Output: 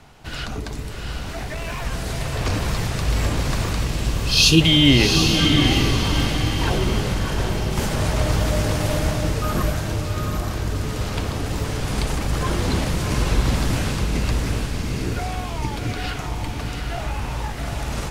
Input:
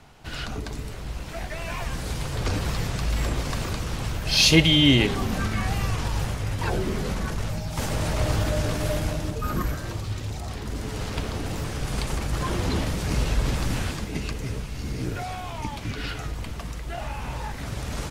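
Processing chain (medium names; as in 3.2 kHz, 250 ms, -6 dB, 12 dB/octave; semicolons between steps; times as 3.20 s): 3.87–4.61 s: brick-wall FIR band-stop 470–2400 Hz; echo that smears into a reverb 753 ms, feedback 42%, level -3.5 dB; 1.20–1.85 s: hard clipper -26.5 dBFS, distortion -35 dB; trim +3 dB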